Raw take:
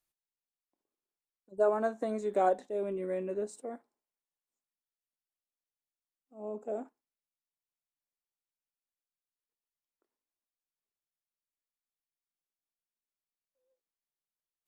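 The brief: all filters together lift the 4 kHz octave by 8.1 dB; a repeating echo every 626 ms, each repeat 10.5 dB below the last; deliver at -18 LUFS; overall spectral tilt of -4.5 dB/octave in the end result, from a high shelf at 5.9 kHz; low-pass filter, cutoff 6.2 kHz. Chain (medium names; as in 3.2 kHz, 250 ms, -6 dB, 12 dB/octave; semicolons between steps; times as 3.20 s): low-pass 6.2 kHz; peaking EQ 4 kHz +7.5 dB; treble shelf 5.9 kHz +8 dB; feedback delay 626 ms, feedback 30%, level -10.5 dB; trim +15 dB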